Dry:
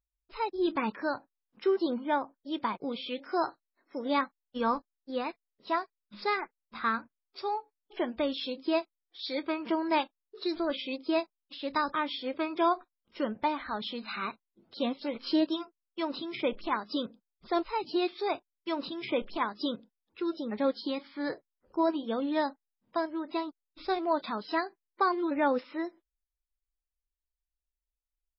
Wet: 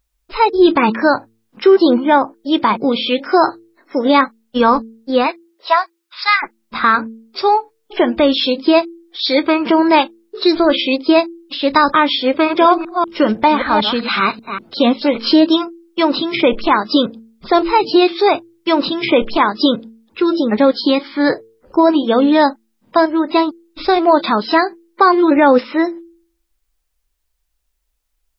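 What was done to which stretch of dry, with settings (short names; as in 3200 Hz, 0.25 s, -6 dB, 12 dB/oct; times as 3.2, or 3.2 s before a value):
5.26–6.42 HPF 380 Hz -> 1300 Hz 24 dB/oct
12.27–14.78 reverse delay 0.193 s, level -9 dB
whole clip: de-hum 112.3 Hz, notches 4; maximiser +20.5 dB; gain -1 dB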